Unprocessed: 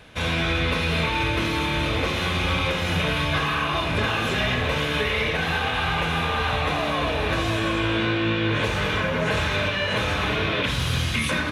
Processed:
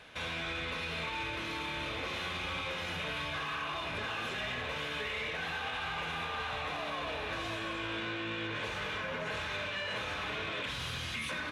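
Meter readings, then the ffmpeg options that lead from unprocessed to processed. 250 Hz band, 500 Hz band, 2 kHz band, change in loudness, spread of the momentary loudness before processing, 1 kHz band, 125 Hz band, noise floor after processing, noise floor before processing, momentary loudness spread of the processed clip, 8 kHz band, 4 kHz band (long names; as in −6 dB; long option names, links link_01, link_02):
−17.0 dB, −14.5 dB, −11.5 dB, −13.0 dB, 1 LU, −12.0 dB, −19.5 dB, −38 dBFS, −26 dBFS, 1 LU, −12.5 dB, −11.5 dB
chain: -filter_complex "[0:a]asplit=2[link_01][link_02];[link_02]highpass=frequency=720:poles=1,volume=9dB,asoftclip=type=tanh:threshold=-13dB[link_03];[link_01][link_03]amix=inputs=2:normalize=0,lowpass=frequency=5900:poles=1,volume=-6dB,alimiter=limit=-21.5dB:level=0:latency=1:release=256,volume=-8dB"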